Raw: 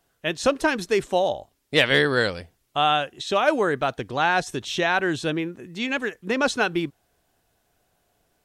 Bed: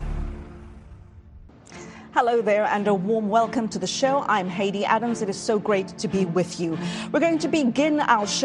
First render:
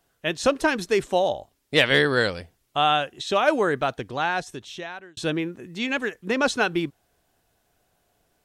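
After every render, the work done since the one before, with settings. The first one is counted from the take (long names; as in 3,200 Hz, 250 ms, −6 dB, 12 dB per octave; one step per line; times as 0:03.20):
0:03.79–0:05.17: fade out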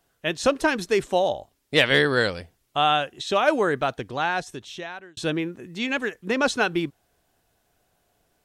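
no processing that can be heard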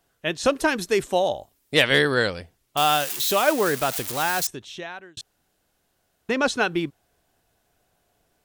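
0:00.45–0:02.14: high-shelf EQ 9,700 Hz +11.5 dB
0:02.77–0:04.47: spike at every zero crossing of −17.5 dBFS
0:05.21–0:06.29: fill with room tone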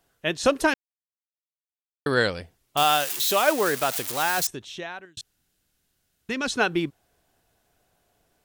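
0:00.74–0:02.06: silence
0:02.83–0:04.38: low-shelf EQ 250 Hz −7 dB
0:05.05–0:06.52: parametric band 690 Hz −11.5 dB 2.1 octaves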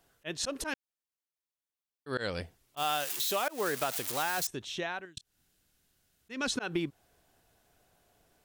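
volume swells 222 ms
downward compressor 6 to 1, threshold −28 dBFS, peak gain reduction 10.5 dB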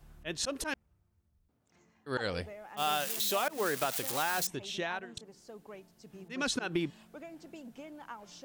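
mix in bed −27 dB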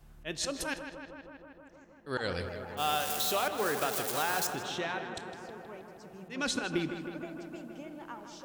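on a send: feedback echo with a low-pass in the loop 158 ms, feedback 80%, low-pass 3,400 Hz, level −8.5 dB
on the sum: dense smooth reverb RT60 0.94 s, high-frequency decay 0.75×, DRR 14.5 dB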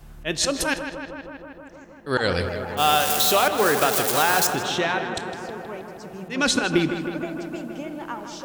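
level +11.5 dB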